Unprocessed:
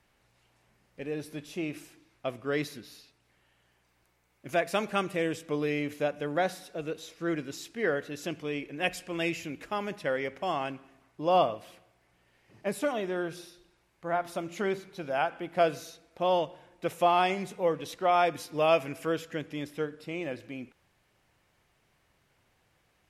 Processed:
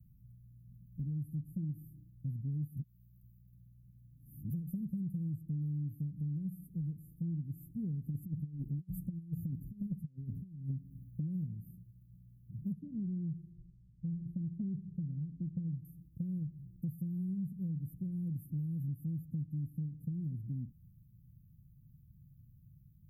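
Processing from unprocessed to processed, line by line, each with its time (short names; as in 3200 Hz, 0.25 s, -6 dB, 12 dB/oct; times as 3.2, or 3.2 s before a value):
2.77–4.5 reverse
8.06–11.22 negative-ratio compressor -38 dBFS, ratio -0.5
12.72–15.85 air absorption 370 m
whole clip: inverse Chebyshev band-stop 650–5500 Hz, stop band 70 dB; bell 160 Hz +8 dB 1.6 oct; compressor, threshold -47 dBFS; gain +11.5 dB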